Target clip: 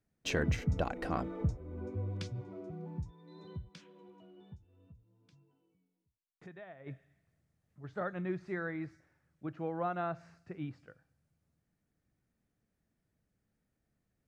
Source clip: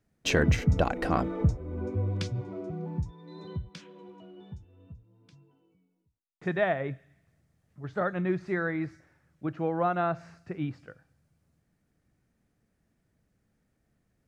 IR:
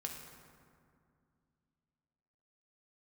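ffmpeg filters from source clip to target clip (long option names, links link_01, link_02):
-filter_complex "[0:a]asplit=3[link_01][link_02][link_03];[link_01]afade=type=out:start_time=4.55:duration=0.02[link_04];[link_02]acompressor=threshold=-45dB:ratio=3,afade=type=in:start_time=4.55:duration=0.02,afade=type=out:start_time=6.86:duration=0.02[link_05];[link_03]afade=type=in:start_time=6.86:duration=0.02[link_06];[link_04][link_05][link_06]amix=inputs=3:normalize=0,volume=-8dB"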